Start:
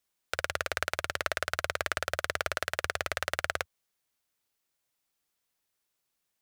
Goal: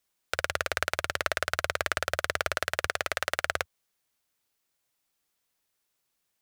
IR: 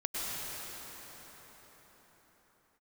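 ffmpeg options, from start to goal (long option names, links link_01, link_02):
-filter_complex "[0:a]asettb=1/sr,asplit=3[link_01][link_02][link_03];[link_01]atrim=end=2.874[link_04];[link_02]atrim=start=2.87:end=3.47,asetpts=PTS-STARTPTS,afade=type=in:duration=0.004:curve=qsin,afade=type=out:start_time=0.596:duration=0.004:curve=qsin,lowshelf=frequency=140:gain=-8.5[link_05];[link_03]atrim=start=3.466[link_06];[link_04][link_05]acrossfade=duration=0.004:curve1=hsin:curve2=qsin[link_07];[link_07][link_06]acrossfade=duration=0.004:curve1=qsin:curve2=hsin,volume=2.5dB"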